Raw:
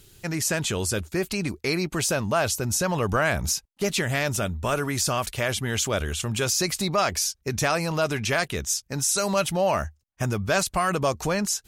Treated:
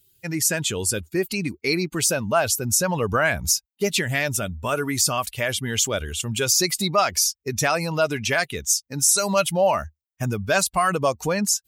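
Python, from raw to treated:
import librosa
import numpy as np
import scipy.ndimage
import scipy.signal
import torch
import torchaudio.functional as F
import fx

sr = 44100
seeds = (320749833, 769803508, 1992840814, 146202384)

y = fx.bin_expand(x, sr, power=1.5)
y = fx.highpass(y, sr, hz=130.0, slope=6)
y = fx.high_shelf(y, sr, hz=7000.0, db=5.0)
y = F.gain(torch.from_numpy(y), 5.5).numpy()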